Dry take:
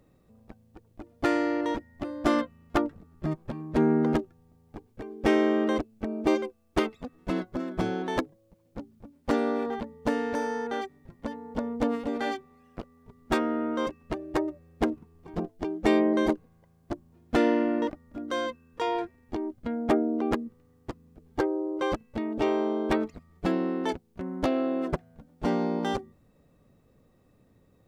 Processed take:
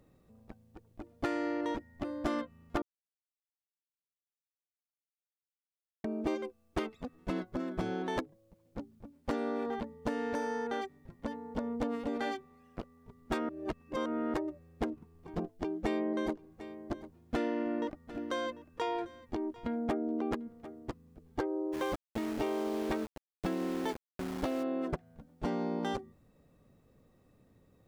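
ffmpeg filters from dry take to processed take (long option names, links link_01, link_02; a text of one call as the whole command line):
ffmpeg -i in.wav -filter_complex "[0:a]asettb=1/sr,asplit=3[link_01][link_02][link_03];[link_01]atrim=end=15.524[link_04];[link_02]atrim=start=15.52:end=20.9,asetpts=PTS-STARTPTS,afade=type=in:duration=0.004:curve=qsin,afade=type=out:start_time=5.376:duration=0.004:curve=qsin,aecho=1:1:745:0.0841,atrim=end_sample=237258[link_05];[link_03]atrim=start=20.896[link_06];[link_04][link_05]acrossfade=duration=0.004:curve1=hsin:curve2=qsin[link_07];[link_07][link_06]acrossfade=duration=0.004:curve1=qsin:curve2=hsin,asplit=3[link_08][link_09][link_10];[link_08]afade=type=out:start_time=21.72:duration=0.02[link_11];[link_09]aeval=exprs='val(0)*gte(abs(val(0)),0.0168)':channel_layout=same,afade=type=in:start_time=21.72:duration=0.02,afade=type=out:start_time=24.62:duration=0.02[link_12];[link_10]afade=type=in:start_time=24.62:duration=0.02[link_13];[link_11][link_12][link_13]amix=inputs=3:normalize=0,asplit=5[link_14][link_15][link_16][link_17][link_18];[link_14]atrim=end=2.82,asetpts=PTS-STARTPTS,afade=type=out:start_time=2.816:duration=0.004:curve=hsin[link_19];[link_15]atrim=start=2.82:end=6.04,asetpts=PTS-STARTPTS,volume=0[link_20];[link_16]atrim=start=6.04:end=13.492,asetpts=PTS-STARTPTS,afade=type=in:duration=0.004:curve=hsin[link_21];[link_17]atrim=start=13.488:end=14.342,asetpts=PTS-STARTPTS,areverse[link_22];[link_18]atrim=start=14.338[link_23];[link_19][link_20][link_21]concat=n=3:v=0:a=1[link_24];[link_24][link_22]acrossfade=duration=0.004:curve1=hsin:curve2=hsin[link_25];[link_25][link_23]acrossfade=duration=0.004:curve1=hsin:curve2=hsin,acompressor=threshold=-28dB:ratio=4,volume=-2.5dB" out.wav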